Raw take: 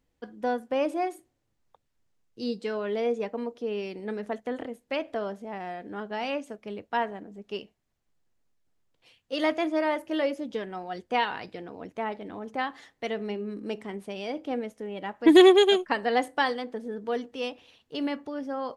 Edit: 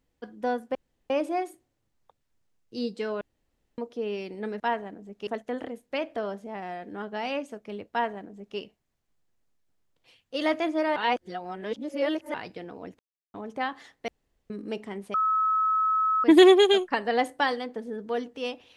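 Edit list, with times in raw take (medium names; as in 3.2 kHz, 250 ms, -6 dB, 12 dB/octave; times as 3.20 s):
0.75 s: insert room tone 0.35 s
2.86–3.43 s: room tone
6.89–7.56 s: copy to 4.25 s
9.94–11.32 s: reverse
11.97–12.32 s: mute
13.06–13.48 s: room tone
14.12–15.22 s: bleep 1.29 kHz -21 dBFS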